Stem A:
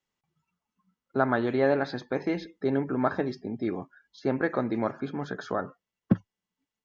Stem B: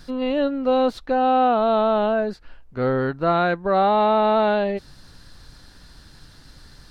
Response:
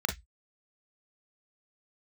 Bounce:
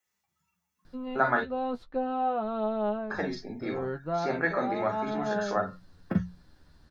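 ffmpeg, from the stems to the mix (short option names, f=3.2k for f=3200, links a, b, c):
-filter_complex "[0:a]bandreject=f=60:t=h:w=6,bandreject=f=120:t=h:w=6,bandreject=f=180:t=h:w=6,crystalizer=i=8:c=0,volume=-4.5dB,asplit=3[a][b][c];[a]atrim=end=1.4,asetpts=PTS-STARTPTS,afade=t=out:st=1.396:d=0.004:c=hsin[d];[b]atrim=start=1.4:end=3.1,asetpts=PTS-STARTPTS,volume=0[e];[c]atrim=start=3.1,asetpts=PTS-STARTPTS,afade=t=in:d=0.004:c=hsin[f];[d][e][f]concat=n=3:v=0:a=1,asplit=3[g][h][i];[h]volume=-5dB[j];[1:a]highshelf=f=2.1k:g=-11.5,adelay=850,volume=-6dB[k];[i]apad=whole_len=342126[l];[k][l]sidechaincompress=threshold=-37dB:ratio=8:attack=31:release=136[m];[2:a]atrim=start_sample=2205[n];[j][n]afir=irnorm=-1:irlink=0[o];[g][m][o]amix=inputs=3:normalize=0,flanger=delay=9.5:depth=3.6:regen=26:speed=0.37:shape=sinusoidal"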